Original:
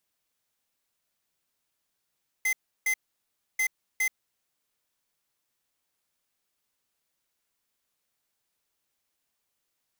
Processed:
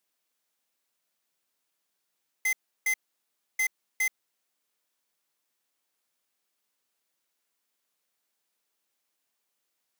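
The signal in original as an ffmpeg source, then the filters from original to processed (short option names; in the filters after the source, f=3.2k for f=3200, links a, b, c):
-f lavfi -i "aevalsrc='0.0531*(2*lt(mod(2060*t,1),0.5)-1)*clip(min(mod(mod(t,1.14),0.41),0.08-mod(mod(t,1.14),0.41))/0.005,0,1)*lt(mod(t,1.14),0.82)':d=2.28:s=44100"
-af "highpass=200"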